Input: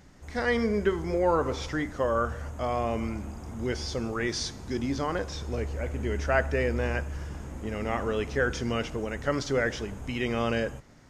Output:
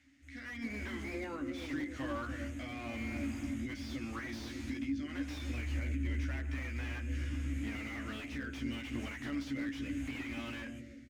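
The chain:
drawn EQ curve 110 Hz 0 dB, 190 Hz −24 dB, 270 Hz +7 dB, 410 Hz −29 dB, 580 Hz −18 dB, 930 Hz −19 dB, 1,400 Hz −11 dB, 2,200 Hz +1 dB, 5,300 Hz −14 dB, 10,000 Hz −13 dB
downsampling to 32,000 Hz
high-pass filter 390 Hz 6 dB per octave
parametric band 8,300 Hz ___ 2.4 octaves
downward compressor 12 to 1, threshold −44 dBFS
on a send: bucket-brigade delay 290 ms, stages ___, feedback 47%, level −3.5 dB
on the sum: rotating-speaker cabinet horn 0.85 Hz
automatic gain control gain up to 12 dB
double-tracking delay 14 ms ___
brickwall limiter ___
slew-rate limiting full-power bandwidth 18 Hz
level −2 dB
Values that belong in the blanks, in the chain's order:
+6 dB, 1,024, −4.5 dB, −25.5 dBFS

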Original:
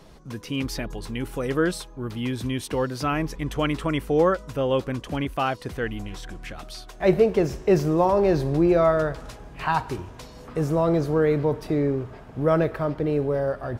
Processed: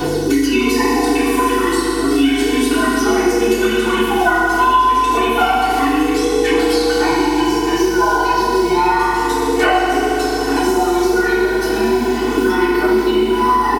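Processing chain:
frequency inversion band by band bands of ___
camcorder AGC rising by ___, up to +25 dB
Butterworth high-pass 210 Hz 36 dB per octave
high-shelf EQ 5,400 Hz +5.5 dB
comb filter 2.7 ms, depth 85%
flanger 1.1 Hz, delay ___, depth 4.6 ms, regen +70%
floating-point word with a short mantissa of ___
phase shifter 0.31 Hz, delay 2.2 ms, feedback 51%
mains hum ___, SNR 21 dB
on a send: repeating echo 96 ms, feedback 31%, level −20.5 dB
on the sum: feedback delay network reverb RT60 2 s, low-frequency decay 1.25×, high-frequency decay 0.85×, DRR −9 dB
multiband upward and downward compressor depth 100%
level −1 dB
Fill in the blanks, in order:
500 Hz, 14 dB per second, 6.9 ms, 6 bits, 50 Hz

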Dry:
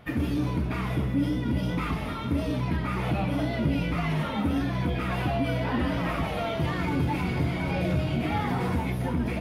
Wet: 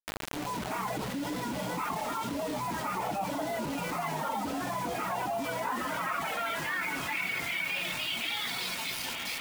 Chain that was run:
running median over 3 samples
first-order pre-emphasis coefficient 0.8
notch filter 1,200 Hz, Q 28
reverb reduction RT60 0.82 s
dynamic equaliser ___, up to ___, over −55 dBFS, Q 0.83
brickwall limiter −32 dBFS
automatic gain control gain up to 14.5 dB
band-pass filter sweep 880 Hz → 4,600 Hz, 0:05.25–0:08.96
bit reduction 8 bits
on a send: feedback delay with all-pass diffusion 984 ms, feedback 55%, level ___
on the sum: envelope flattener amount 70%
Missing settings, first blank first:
210 Hz, +7 dB, −15 dB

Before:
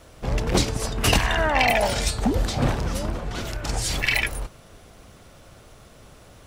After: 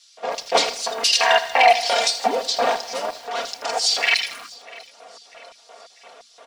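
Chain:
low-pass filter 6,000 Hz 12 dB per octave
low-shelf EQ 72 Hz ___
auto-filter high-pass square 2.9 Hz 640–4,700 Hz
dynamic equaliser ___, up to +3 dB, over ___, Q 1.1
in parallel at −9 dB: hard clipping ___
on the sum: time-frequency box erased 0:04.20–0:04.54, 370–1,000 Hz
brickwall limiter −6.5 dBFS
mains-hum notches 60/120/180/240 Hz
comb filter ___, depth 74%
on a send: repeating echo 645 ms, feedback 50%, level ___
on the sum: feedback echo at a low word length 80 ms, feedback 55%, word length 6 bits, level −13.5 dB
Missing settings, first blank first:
−12 dB, 3,200 Hz, −34 dBFS, −12 dBFS, 4.3 ms, −22.5 dB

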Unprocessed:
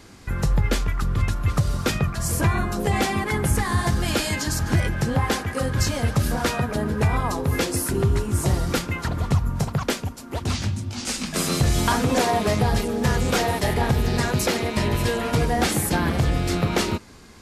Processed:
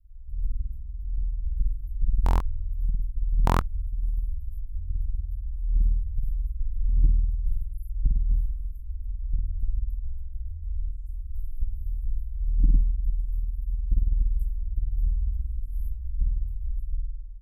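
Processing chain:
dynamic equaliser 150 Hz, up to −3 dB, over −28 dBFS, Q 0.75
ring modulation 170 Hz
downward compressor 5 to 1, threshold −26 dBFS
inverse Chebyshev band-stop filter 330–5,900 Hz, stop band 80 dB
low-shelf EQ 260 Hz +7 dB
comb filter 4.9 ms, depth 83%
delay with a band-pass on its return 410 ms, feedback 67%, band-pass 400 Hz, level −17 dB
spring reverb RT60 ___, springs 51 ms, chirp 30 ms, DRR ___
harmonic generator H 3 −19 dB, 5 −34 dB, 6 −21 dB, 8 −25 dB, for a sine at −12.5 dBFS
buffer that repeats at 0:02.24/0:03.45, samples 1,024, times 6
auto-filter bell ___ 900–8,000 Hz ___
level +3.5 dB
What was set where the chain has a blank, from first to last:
1.6 s, −3 dB, 0.87 Hz, +17 dB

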